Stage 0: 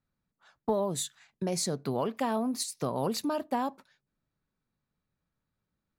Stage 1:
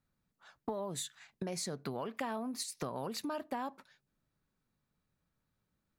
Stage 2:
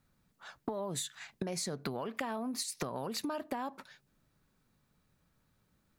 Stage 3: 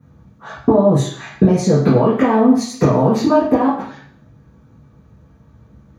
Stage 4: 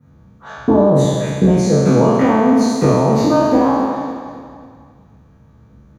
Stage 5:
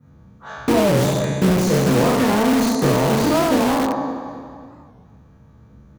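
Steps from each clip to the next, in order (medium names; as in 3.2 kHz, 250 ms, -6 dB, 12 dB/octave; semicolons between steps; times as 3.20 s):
compression 5:1, threshold -39 dBFS, peak gain reduction 14 dB; dynamic bell 1.8 kHz, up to +6 dB, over -58 dBFS, Q 0.82; trim +1.5 dB
compression, threshold -43 dBFS, peak gain reduction 10.5 dB; trim +9 dB
reverberation RT60 0.55 s, pre-delay 3 ms, DRR -11.5 dB; trim -2 dB
spectral sustain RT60 1.66 s; on a send: feedback delay 275 ms, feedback 43%, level -12.5 dB; on the sum: trim -3 dB
in parallel at -6 dB: integer overflow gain 11.5 dB; on the sum: warped record 45 rpm, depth 160 cents; trim -4.5 dB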